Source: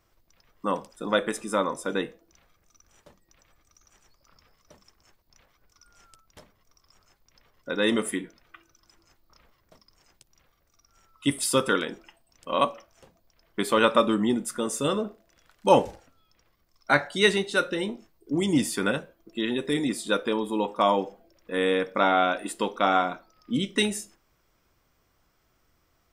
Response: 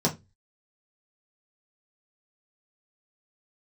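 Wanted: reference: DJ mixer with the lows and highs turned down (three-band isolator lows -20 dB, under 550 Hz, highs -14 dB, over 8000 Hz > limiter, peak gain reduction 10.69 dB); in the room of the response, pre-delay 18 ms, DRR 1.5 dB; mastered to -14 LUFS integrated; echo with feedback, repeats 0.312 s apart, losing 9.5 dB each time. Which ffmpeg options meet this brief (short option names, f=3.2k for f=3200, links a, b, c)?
-filter_complex "[0:a]aecho=1:1:312|624|936|1248:0.335|0.111|0.0365|0.012,asplit=2[a][b];[1:a]atrim=start_sample=2205,adelay=18[c];[b][c]afir=irnorm=-1:irlink=0,volume=-12.5dB[d];[a][d]amix=inputs=2:normalize=0,acrossover=split=550 8000:gain=0.1 1 0.2[e][f][g];[e][f][g]amix=inputs=3:normalize=0,volume=15.5dB,alimiter=limit=-0.5dB:level=0:latency=1"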